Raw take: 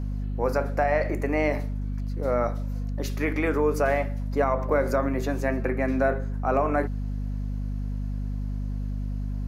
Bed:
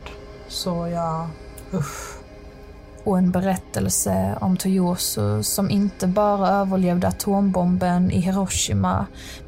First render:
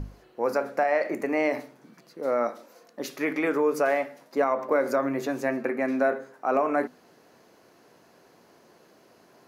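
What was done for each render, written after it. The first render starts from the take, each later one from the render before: hum notches 50/100/150/200/250 Hz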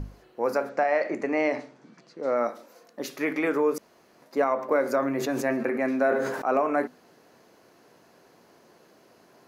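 0.69–2.36 s: low-pass 7.4 kHz 24 dB/octave; 3.78–4.22 s: room tone; 5.00–6.54 s: decay stretcher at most 40 dB/s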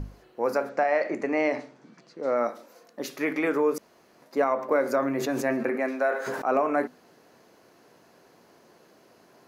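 5.75–6.26 s: high-pass 220 Hz -> 850 Hz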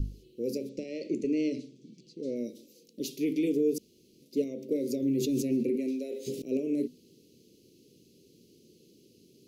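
inverse Chebyshev band-stop 740–1700 Hz, stop band 50 dB; bass shelf 170 Hz +5 dB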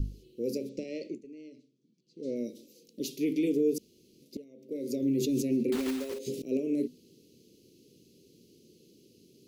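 0.97–2.30 s: dip -19 dB, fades 0.24 s; 4.37–4.98 s: fade in quadratic, from -20 dB; 5.72–6.19 s: block-companded coder 3-bit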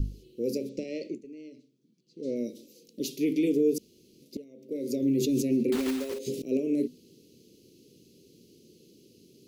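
trim +2.5 dB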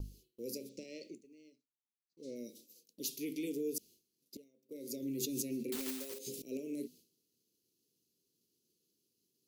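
pre-emphasis filter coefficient 0.8; expander -55 dBFS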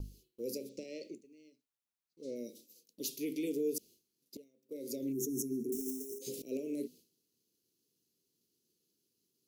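5.13–6.22 s: time-frequency box 470–5300 Hz -28 dB; dynamic bell 570 Hz, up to +5 dB, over -55 dBFS, Q 0.76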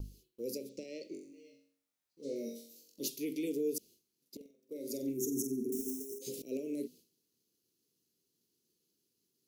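1.08–3.08 s: flutter echo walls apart 3.7 m, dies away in 0.56 s; 4.36–6.00 s: flutter echo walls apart 8 m, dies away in 0.36 s

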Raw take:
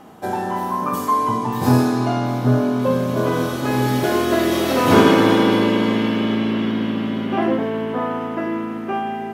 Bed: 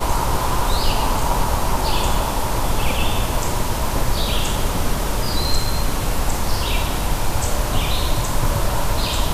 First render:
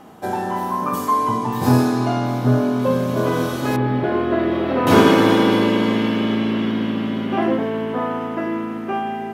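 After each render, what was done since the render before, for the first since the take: 3.76–4.87 s: distance through air 470 m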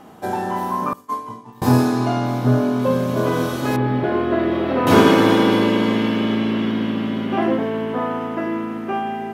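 0.93–1.62 s: expander -11 dBFS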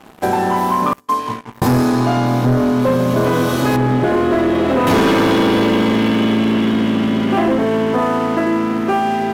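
waveshaping leveller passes 3; compression 2.5:1, threshold -15 dBFS, peak gain reduction 7.5 dB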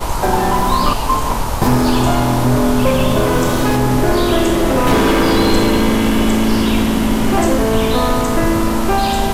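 add bed 0 dB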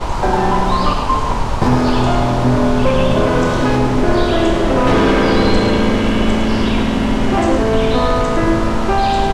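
distance through air 96 m; delay 107 ms -7.5 dB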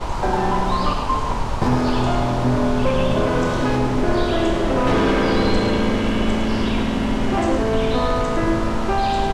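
trim -5 dB

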